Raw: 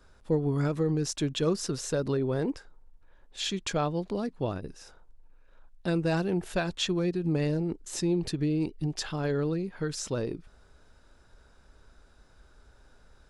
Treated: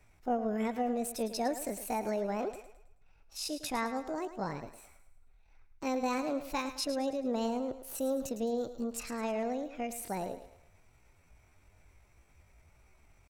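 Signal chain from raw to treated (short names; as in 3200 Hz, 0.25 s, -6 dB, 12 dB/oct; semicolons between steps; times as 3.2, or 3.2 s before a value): pitch shift +7.5 st; thinning echo 0.107 s, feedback 42%, high-pass 310 Hz, level -11 dB; gain -5.5 dB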